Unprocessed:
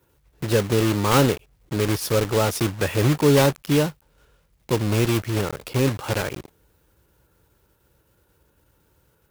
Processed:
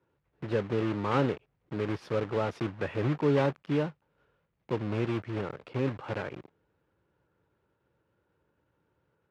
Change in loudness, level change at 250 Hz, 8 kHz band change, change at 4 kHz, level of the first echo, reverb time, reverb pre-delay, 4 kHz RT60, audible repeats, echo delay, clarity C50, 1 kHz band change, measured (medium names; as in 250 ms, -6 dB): -9.5 dB, -8.5 dB, under -25 dB, -17.0 dB, no echo, no reverb, no reverb, no reverb, no echo, no echo, no reverb, -8.5 dB